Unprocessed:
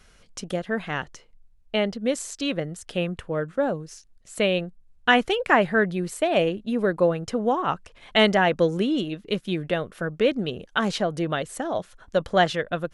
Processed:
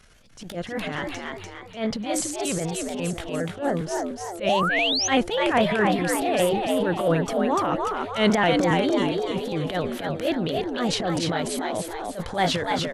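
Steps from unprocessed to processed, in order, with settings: trilling pitch shifter +1.5 st, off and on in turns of 0.136 s; transient shaper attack -12 dB, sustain +8 dB; frequency-shifting echo 0.294 s, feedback 45%, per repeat +87 Hz, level -3.5 dB; painted sound rise, 4.4–5.08, 490–6700 Hz -24 dBFS; attack slew limiter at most 180 dB/s

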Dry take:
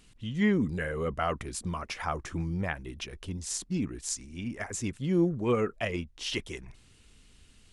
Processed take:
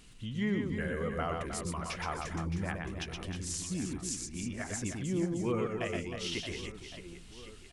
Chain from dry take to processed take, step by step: compressor 1.5:1, threshold -50 dBFS, peak gain reduction 10.5 dB; on a send: reverse bouncing-ball echo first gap 0.12 s, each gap 1.6×, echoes 5; on the sum: gain +2.5 dB

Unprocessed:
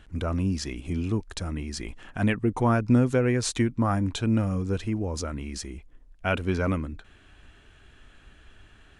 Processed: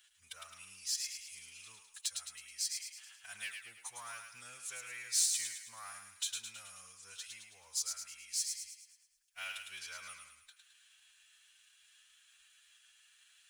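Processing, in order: half-wave gain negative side -3 dB; passive tone stack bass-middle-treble 10-0-10; in parallel at 0 dB: compressor, threshold -37 dBFS, peak gain reduction 9 dB; on the sum: time stretch by phase-locked vocoder 1.5×; differentiator; on a send: thinning echo 0.107 s, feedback 49%, high-pass 950 Hz, level -4.5 dB

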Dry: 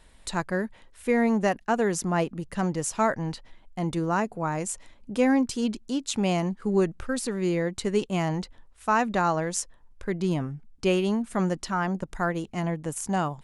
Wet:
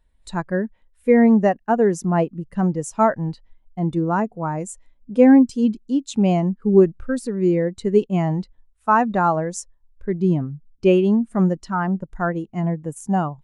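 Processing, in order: spectral expander 1.5:1; gain +7 dB

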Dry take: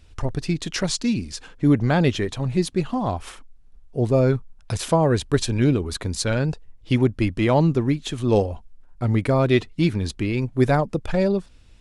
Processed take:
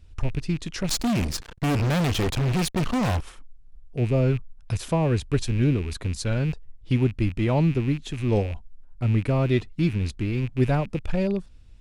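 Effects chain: rattling part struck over -31 dBFS, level -23 dBFS; low shelf 190 Hz +10 dB; 0.89–3.21 fuzz box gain 28 dB, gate -33 dBFS; gain -7.5 dB

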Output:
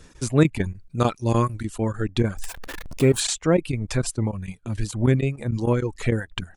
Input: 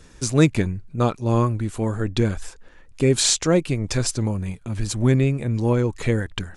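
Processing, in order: 2.38–3.2 zero-crossing step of -26.5 dBFS; dynamic EQ 5500 Hz, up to -8 dB, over -41 dBFS, Q 1.2; chopper 6.7 Hz, depth 65%, duty 90%; 0.64–1.65 high shelf 2300 Hz +7.5 dB; reverb removal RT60 0.78 s

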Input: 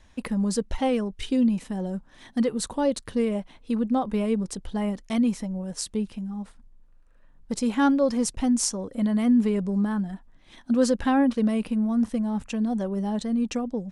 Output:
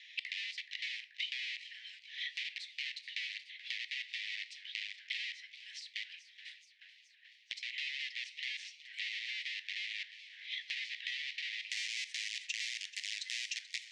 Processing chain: octaver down 1 oct, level +1 dB; wrapped overs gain 18.5 dB; steep high-pass 1900 Hz 96 dB/oct; shoebox room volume 170 m³, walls furnished, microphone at 0.36 m; limiter -21 dBFS, peak gain reduction 8.5 dB; compressor 16:1, threshold -48 dBFS, peak gain reduction 20.5 dB; LPF 4000 Hz 24 dB/oct, from 11.7 s 6500 Hz; warbling echo 0.429 s, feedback 70%, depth 149 cents, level -15.5 dB; gain +14 dB

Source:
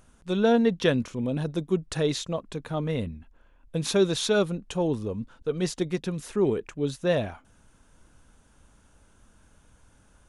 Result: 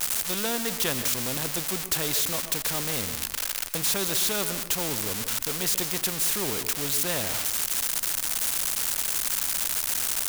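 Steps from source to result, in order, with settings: switching spikes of -19.5 dBFS; on a send at -15.5 dB: reverb RT60 0.35 s, pre-delay 0.118 s; on the sum: spectral compressor 2:1

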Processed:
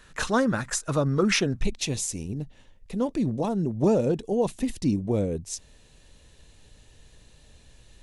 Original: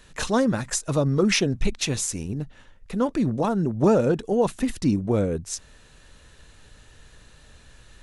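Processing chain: bell 1400 Hz +6.5 dB 0.79 oct, from 1.63 s -10.5 dB; gain -2.5 dB

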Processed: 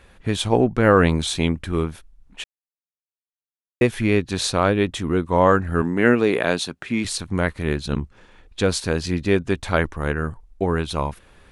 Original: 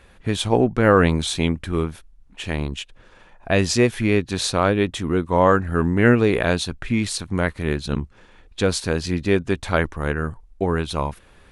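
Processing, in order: 2.44–3.81 mute; 5.82–7.05 HPF 190 Hz 12 dB/oct

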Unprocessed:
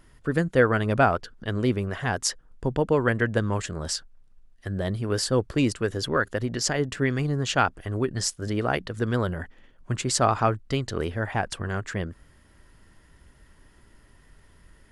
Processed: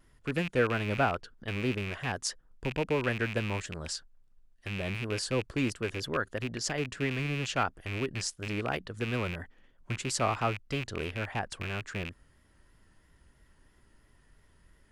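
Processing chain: rattling part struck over -31 dBFS, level -18 dBFS; vibrato 3 Hz 49 cents; gain -7.5 dB

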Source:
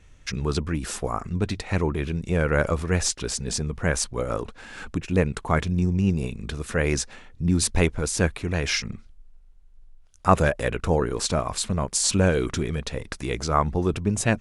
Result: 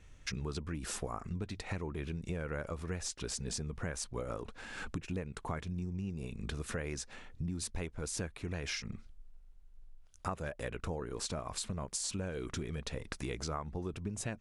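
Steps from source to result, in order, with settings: compressor 12:1, threshold -30 dBFS, peak gain reduction 19 dB; gain -4.5 dB

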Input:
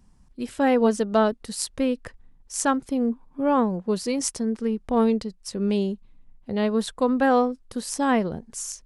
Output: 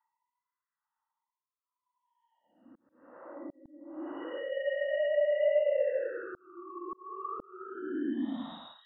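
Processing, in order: sine-wave speech; dynamic EQ 770 Hz, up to +5 dB, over -32 dBFS, Q 0.79; Paulstretch 16×, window 0.05 s, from 6.3; auto swell 0.683 s; fixed phaser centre 1000 Hz, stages 4

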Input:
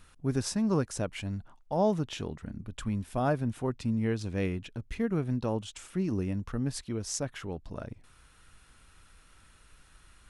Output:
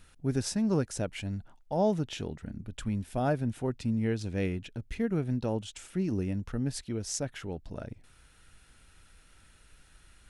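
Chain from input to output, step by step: bell 1100 Hz -8 dB 0.36 oct

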